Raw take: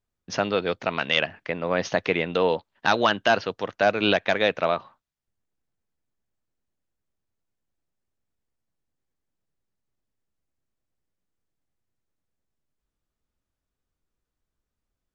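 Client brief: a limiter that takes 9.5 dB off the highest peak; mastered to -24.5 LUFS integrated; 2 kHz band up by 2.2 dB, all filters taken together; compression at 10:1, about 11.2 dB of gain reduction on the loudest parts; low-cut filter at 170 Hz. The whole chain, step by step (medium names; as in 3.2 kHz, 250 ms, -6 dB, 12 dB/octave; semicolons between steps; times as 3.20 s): high-pass 170 Hz; peaking EQ 2 kHz +3 dB; compression 10:1, threshold -26 dBFS; trim +9 dB; peak limiter -9.5 dBFS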